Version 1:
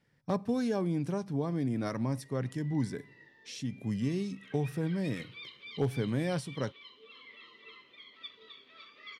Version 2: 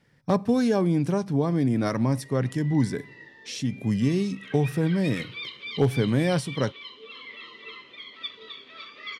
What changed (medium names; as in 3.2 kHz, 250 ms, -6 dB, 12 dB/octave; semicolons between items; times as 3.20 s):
speech +8.5 dB; background +10.5 dB